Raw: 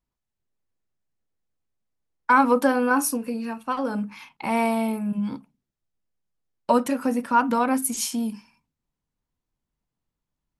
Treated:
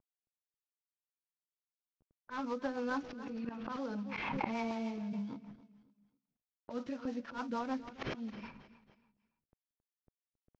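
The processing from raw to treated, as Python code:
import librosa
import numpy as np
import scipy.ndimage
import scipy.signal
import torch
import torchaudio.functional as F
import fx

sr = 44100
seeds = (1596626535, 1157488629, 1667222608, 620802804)

y = fx.cvsd(x, sr, bps=32000)
y = fx.rider(y, sr, range_db=3, speed_s=2.0)
y = fx.env_lowpass(y, sr, base_hz=1000.0, full_db=-17.5)
y = fx.gate_flip(y, sr, shuts_db=-23.0, range_db=-27)
y = fx.auto_swell(y, sr, attack_ms=108.0)
y = fx.echo_feedback(y, sr, ms=270, feedback_pct=35, wet_db=-15.0)
y = fx.rotary(y, sr, hz=6.7)
y = fx.pre_swell(y, sr, db_per_s=24.0, at=(2.78, 5.34))
y = F.gain(torch.from_numpy(y), 13.0).numpy()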